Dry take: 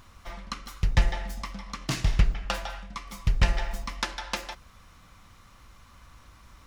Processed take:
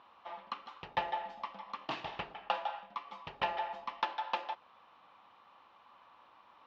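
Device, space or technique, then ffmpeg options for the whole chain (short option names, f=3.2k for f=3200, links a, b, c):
phone earpiece: -af "highpass=490,equalizer=f=850:t=q:w=4:g=8,equalizer=f=1.5k:t=q:w=4:g=-6,equalizer=f=2.1k:t=q:w=4:g=-9,lowpass=f=3.1k:w=0.5412,lowpass=f=3.1k:w=1.3066,volume=-2dB"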